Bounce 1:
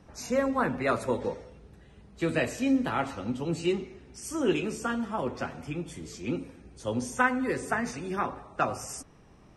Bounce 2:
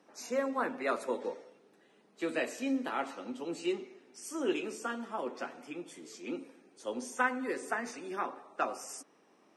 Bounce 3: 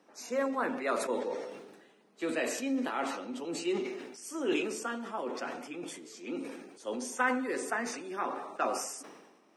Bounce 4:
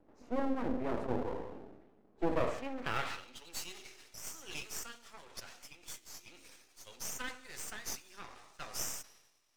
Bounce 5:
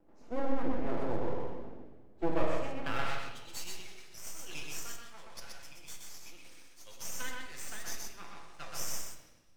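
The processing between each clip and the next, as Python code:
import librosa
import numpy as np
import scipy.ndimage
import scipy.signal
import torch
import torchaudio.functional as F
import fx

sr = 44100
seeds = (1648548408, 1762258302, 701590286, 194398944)

y1 = scipy.signal.sosfilt(scipy.signal.butter(4, 260.0, 'highpass', fs=sr, output='sos'), x)
y1 = y1 * librosa.db_to_amplitude(-5.0)
y2 = fx.peak_eq(y1, sr, hz=120.0, db=-3.5, octaves=0.77)
y2 = fx.sustainer(y2, sr, db_per_s=47.0)
y3 = fx.filter_sweep_bandpass(y2, sr, from_hz=260.0, to_hz=5900.0, start_s=2.04, end_s=3.58, q=1.4)
y3 = np.maximum(y3, 0.0)
y3 = y3 * librosa.db_to_amplitude(7.0)
y4 = y3 + 10.0 ** (-3.0 / 20.0) * np.pad(y3, (int(125 * sr / 1000.0), 0))[:len(y3)]
y4 = fx.room_shoebox(y4, sr, seeds[0], volume_m3=650.0, walls='mixed', distance_m=0.77)
y4 = y4 * librosa.db_to_amplitude(-2.0)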